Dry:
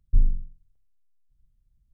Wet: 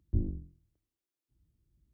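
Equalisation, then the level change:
high-pass filter 48 Hz 24 dB per octave
parametric band 320 Hz +14.5 dB 0.72 octaves
0.0 dB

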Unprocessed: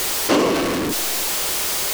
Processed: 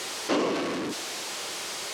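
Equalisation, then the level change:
band-pass filter 150–7,000 Hz
−8.5 dB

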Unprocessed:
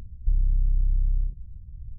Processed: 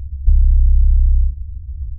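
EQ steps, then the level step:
parametric band 70 Hz +14.5 dB 0.91 octaves
low-shelf EQ 110 Hz +11.5 dB
−4.0 dB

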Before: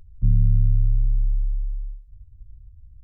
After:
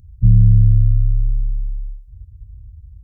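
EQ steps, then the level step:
high-pass filter 52 Hz 12 dB per octave
bass and treble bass +13 dB, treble +8 dB
−1.5 dB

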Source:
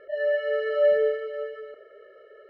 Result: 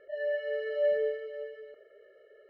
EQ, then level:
notch filter 1,300 Hz, Q 8.3
−7.0 dB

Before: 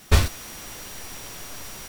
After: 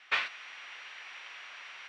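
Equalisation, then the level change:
high-pass filter 1,300 Hz 12 dB per octave
low-pass with resonance 2,500 Hz, resonance Q 1.7
high-frequency loss of the air 66 metres
−2.5 dB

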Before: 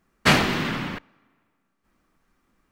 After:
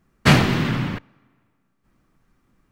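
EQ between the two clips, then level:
parametric band 120 Hz +8 dB 0.57 octaves
low-shelf EQ 350 Hz +6 dB
0.0 dB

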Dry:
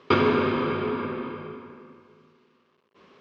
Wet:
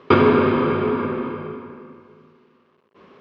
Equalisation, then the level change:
high-shelf EQ 3,000 Hz −11.5 dB
+7.0 dB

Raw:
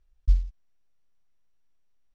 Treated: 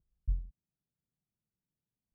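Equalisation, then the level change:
resonant band-pass 160 Hz, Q 1.9
+4.5 dB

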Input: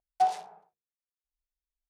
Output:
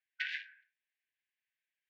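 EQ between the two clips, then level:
linear-phase brick-wall high-pass 1,500 Hz
low-pass filter 2,600 Hz 24 dB per octave
+15.5 dB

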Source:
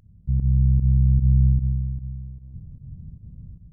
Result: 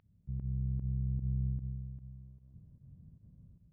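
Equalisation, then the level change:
high-frequency loss of the air 400 metres
spectral tilt +3.5 dB per octave
−4.5 dB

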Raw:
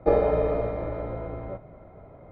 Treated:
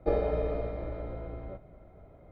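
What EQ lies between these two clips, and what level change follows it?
octave-band graphic EQ 125/250/500/1,000/2,000 Hz −7/−4/−5/−9/−5 dB
0.0 dB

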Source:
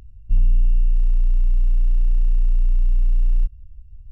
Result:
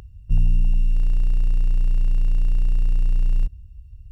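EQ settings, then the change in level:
parametric band 260 Hz −5.5 dB 0.9 octaves
dynamic equaliser 200 Hz, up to +6 dB, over −42 dBFS, Q 0.9
high-pass filter 90 Hz 6 dB per octave
+8.0 dB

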